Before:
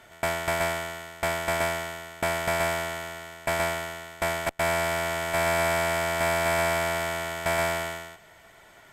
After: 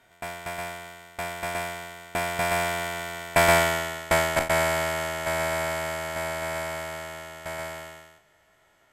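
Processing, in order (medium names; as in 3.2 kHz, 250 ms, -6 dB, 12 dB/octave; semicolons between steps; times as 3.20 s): spectral sustain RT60 0.37 s; Doppler pass-by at 3.64 s, 12 m/s, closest 6.3 m; trim +8 dB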